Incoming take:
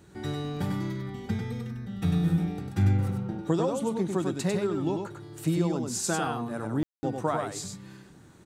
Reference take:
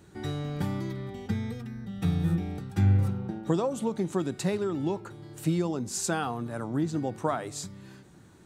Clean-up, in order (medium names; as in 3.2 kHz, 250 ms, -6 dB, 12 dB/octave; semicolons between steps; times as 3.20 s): room tone fill 6.83–7.03 s; inverse comb 98 ms -4.5 dB